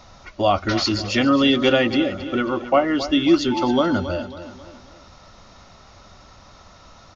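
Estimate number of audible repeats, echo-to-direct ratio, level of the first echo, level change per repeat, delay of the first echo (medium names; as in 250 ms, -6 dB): 4, -12.0 dB, -13.0 dB, -7.0 dB, 271 ms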